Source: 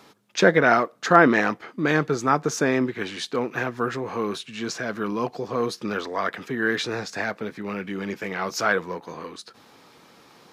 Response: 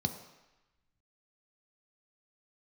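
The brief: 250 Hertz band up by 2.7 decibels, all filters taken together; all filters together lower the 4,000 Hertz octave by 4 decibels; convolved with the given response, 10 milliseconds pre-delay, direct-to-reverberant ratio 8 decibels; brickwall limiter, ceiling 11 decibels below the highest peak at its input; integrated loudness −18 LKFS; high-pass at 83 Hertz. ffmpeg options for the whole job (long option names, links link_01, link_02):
-filter_complex "[0:a]highpass=83,equalizer=frequency=250:width_type=o:gain=3.5,equalizer=frequency=4000:width_type=o:gain=-5,alimiter=limit=-12.5dB:level=0:latency=1,asplit=2[link_01][link_02];[1:a]atrim=start_sample=2205,adelay=10[link_03];[link_02][link_03]afir=irnorm=-1:irlink=0,volume=-11.5dB[link_04];[link_01][link_04]amix=inputs=2:normalize=0,volume=6dB"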